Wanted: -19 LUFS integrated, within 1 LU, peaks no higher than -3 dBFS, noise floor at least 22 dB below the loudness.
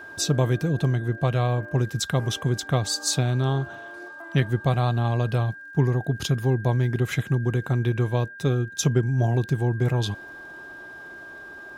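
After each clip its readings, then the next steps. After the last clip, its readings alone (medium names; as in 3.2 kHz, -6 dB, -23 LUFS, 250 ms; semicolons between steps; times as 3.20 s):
tick rate 40 per s; steady tone 1.6 kHz; tone level -39 dBFS; loudness -24.5 LUFS; peak level -7.5 dBFS; loudness target -19.0 LUFS
-> de-click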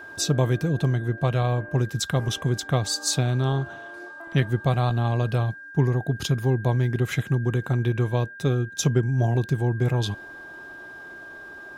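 tick rate 0.34 per s; steady tone 1.6 kHz; tone level -39 dBFS
-> band-stop 1.6 kHz, Q 30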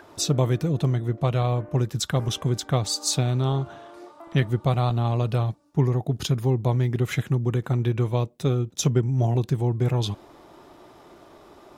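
steady tone not found; loudness -24.5 LUFS; peak level -7.5 dBFS; loudness target -19.0 LUFS
-> trim +5.5 dB; peak limiter -3 dBFS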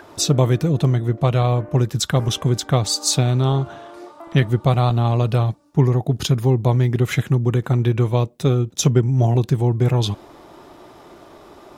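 loudness -19.0 LUFS; peak level -3.0 dBFS; noise floor -46 dBFS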